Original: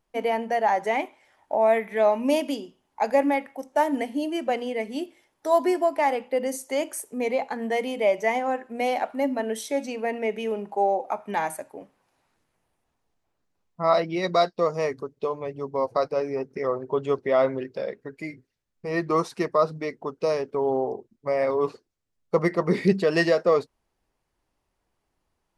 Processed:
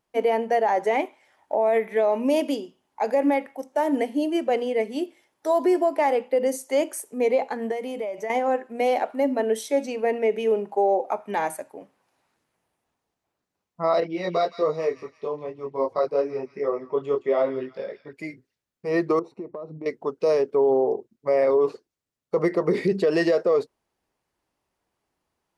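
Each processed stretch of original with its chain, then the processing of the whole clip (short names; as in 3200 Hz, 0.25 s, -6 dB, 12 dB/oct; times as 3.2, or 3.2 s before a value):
7.71–8.3 bell 3400 Hz -4 dB 1.7 oct + compressor 16:1, threshold -28 dBFS
14–18.13 high shelf 9200 Hz -11.5 dB + thin delay 0.167 s, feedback 37%, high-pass 1900 Hz, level -9.5 dB + detuned doubles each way 17 cents
19.19–19.86 running mean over 27 samples + bell 330 Hz +6 dB 0.4 oct + compressor 16:1, threshold -31 dBFS
whole clip: HPF 130 Hz 6 dB/oct; dynamic EQ 420 Hz, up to +8 dB, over -36 dBFS, Q 1.3; limiter -13 dBFS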